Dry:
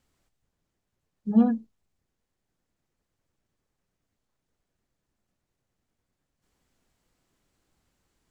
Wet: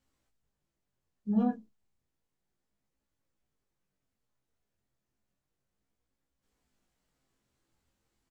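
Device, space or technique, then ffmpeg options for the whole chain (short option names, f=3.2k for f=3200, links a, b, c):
double-tracked vocal: -filter_complex "[0:a]asplit=2[a][b];[b]adelay=15,volume=-5.5dB[c];[a][c]amix=inputs=2:normalize=0,flanger=delay=18.5:depth=5.8:speed=0.32,volume=-3.5dB"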